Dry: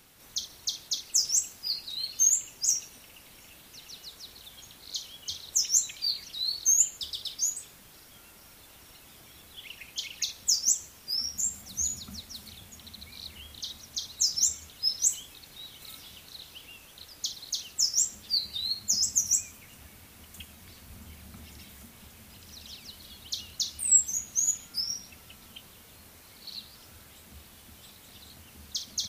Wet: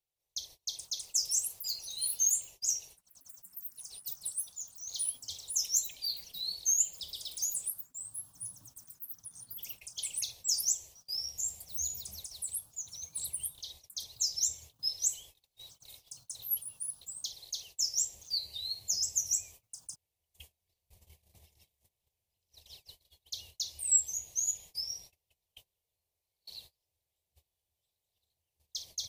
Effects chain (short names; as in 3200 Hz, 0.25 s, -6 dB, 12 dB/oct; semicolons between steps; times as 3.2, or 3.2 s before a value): gate -45 dBFS, range -28 dB; fixed phaser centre 580 Hz, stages 4; echoes that change speed 0.546 s, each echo +7 st, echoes 3, each echo -6 dB; gain -5 dB